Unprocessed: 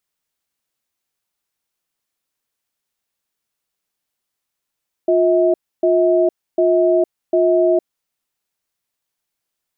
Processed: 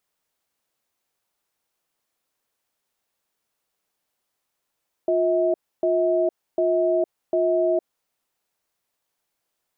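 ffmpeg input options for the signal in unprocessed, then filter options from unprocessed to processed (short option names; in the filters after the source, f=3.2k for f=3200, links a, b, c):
-f lavfi -i "aevalsrc='0.2*(sin(2*PI*355*t)+sin(2*PI*643*t))*clip(min(mod(t,0.75),0.46-mod(t,0.75))/0.005,0,1)':d=2.9:s=44100"
-af "equalizer=f=650:w=0.57:g=6,alimiter=limit=-14.5dB:level=0:latency=1:release=52"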